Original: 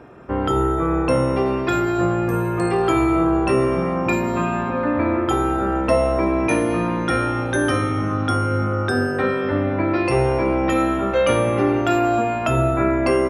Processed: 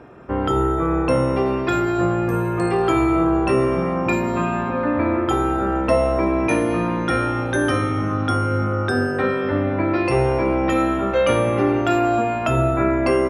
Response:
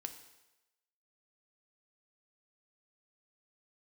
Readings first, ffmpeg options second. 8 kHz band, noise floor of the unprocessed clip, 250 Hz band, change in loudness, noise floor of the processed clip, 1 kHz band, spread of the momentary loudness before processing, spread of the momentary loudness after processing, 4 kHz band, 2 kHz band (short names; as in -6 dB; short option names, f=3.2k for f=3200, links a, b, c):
-2.0 dB, -24 dBFS, 0.0 dB, 0.0 dB, -24 dBFS, 0.0 dB, 3 LU, 3 LU, -0.5 dB, 0.0 dB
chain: -af "highshelf=f=8.2k:g=-4.5"